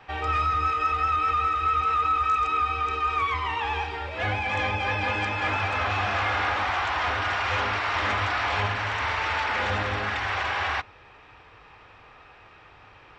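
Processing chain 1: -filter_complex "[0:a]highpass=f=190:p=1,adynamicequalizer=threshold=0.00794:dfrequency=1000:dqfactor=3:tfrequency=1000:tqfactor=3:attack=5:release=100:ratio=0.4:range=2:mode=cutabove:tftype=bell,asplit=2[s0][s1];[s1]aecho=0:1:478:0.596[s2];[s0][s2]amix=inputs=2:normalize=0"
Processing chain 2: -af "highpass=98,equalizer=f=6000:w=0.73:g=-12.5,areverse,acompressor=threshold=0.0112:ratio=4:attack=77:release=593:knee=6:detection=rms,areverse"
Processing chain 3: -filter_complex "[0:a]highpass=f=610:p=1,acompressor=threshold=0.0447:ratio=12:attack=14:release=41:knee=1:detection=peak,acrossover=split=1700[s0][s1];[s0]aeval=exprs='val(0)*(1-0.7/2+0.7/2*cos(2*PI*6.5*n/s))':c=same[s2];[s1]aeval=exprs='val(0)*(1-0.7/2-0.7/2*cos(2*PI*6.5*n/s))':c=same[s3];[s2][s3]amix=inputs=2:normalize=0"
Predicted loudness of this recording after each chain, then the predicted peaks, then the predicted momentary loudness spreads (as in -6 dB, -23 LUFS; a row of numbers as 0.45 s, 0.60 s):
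-25.0 LUFS, -38.0 LUFS, -31.0 LUFS; -14.0 dBFS, -25.5 dBFS, -20.5 dBFS; 5 LU, 15 LU, 2 LU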